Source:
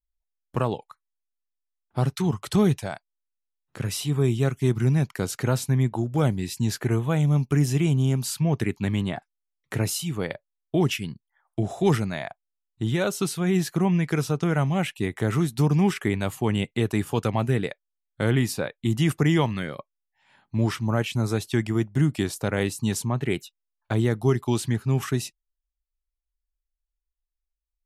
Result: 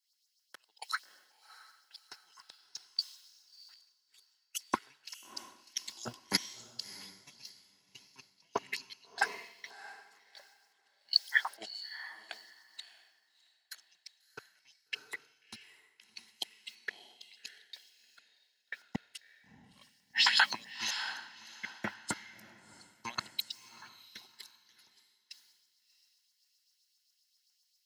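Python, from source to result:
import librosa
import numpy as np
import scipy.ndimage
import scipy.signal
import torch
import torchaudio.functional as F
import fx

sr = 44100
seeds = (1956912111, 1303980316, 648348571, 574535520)

y = fx.peak_eq(x, sr, hz=4900.0, db=14.0, octaves=0.67)
y = fx.filter_lfo_highpass(y, sr, shape='saw_up', hz=7.6, low_hz=990.0, high_hz=6100.0, q=2.6)
y = fx.over_compress(y, sr, threshold_db=-58.0, ratio=-0.5)
y = fx.notch_comb(y, sr, f0_hz=1200.0)
y = fx.echo_diffused(y, sr, ms=664, feedback_pct=41, wet_db=-6)
y = fx.band_widen(y, sr, depth_pct=100)
y = y * librosa.db_to_amplitude(5.5)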